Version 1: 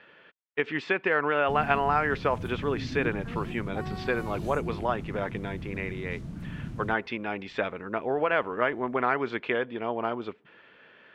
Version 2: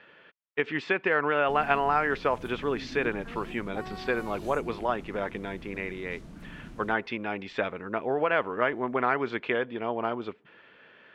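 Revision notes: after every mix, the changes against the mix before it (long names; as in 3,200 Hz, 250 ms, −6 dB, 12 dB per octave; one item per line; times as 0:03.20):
background: add parametric band 110 Hz −14.5 dB 1.6 octaves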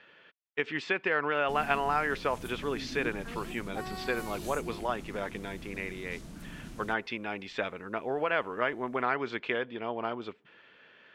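speech −4.5 dB
master: add high-shelf EQ 4,000 Hz +11.5 dB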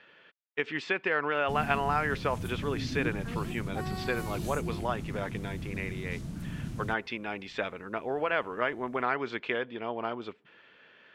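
background: add parametric band 110 Hz +14.5 dB 1.6 octaves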